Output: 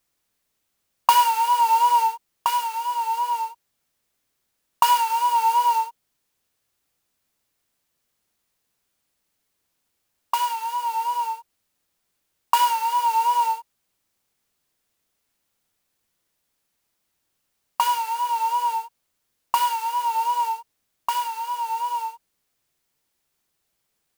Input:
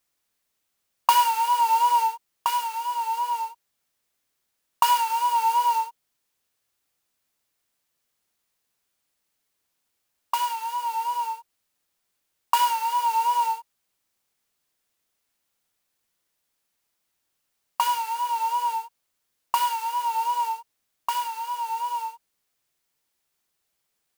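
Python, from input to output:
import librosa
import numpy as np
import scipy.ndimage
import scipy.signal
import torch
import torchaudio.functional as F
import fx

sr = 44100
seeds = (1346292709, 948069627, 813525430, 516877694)

y = fx.low_shelf(x, sr, hz=410.0, db=5.0)
y = y * 10.0 ** (1.5 / 20.0)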